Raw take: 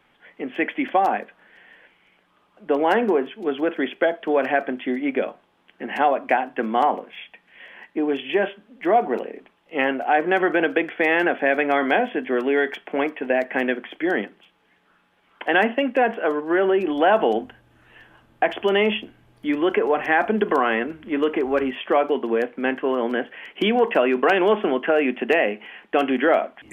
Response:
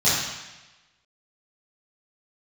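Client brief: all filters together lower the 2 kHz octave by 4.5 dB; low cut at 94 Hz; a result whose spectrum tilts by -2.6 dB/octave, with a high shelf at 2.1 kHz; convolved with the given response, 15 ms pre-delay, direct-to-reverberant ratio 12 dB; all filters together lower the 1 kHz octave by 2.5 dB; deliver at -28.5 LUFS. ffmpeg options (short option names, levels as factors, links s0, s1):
-filter_complex "[0:a]highpass=94,equalizer=f=1000:t=o:g=-3.5,equalizer=f=2000:t=o:g=-8,highshelf=f=2100:g=6,asplit=2[s0][s1];[1:a]atrim=start_sample=2205,adelay=15[s2];[s1][s2]afir=irnorm=-1:irlink=0,volume=0.0335[s3];[s0][s3]amix=inputs=2:normalize=0,volume=0.531"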